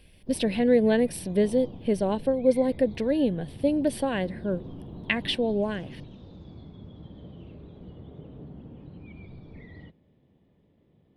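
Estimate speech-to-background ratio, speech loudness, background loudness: 18.0 dB, -26.0 LUFS, -44.0 LUFS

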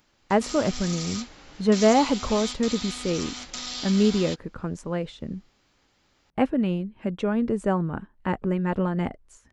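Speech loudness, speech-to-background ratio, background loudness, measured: -25.5 LUFS, 8.0 dB, -33.5 LUFS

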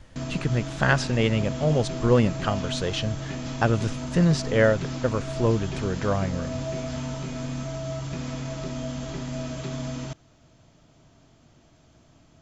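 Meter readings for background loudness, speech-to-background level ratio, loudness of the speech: -33.0 LUFS, 8.0 dB, -25.0 LUFS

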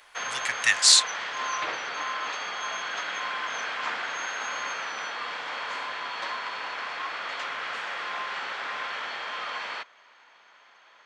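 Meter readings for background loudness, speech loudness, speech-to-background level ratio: -31.5 LUFS, -18.5 LUFS, 13.0 dB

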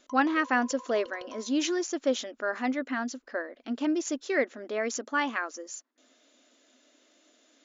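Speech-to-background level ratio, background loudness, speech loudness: 17.5 dB, -47.5 LUFS, -30.0 LUFS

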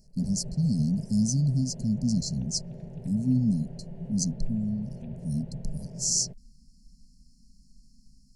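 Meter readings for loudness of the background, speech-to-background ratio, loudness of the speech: -41.0 LUFS, 12.5 dB, -28.5 LUFS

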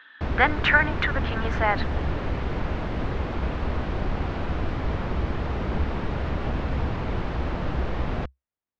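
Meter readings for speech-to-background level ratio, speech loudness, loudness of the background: 6.0 dB, -23.5 LUFS, -29.5 LUFS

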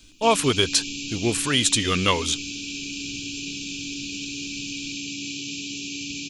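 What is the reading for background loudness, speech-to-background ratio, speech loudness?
-31.0 LUFS, 9.0 dB, -22.0 LUFS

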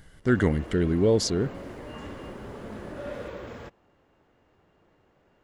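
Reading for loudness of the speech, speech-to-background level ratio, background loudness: -24.5 LUFS, 16.0 dB, -40.5 LUFS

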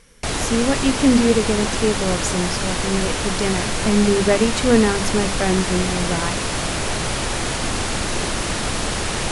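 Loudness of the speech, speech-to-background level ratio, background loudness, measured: -20.5 LUFS, 2.0 dB, -22.5 LUFS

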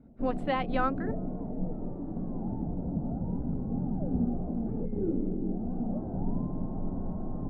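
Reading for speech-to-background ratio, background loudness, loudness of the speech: 1.5 dB, -34.0 LUFS, -32.5 LUFS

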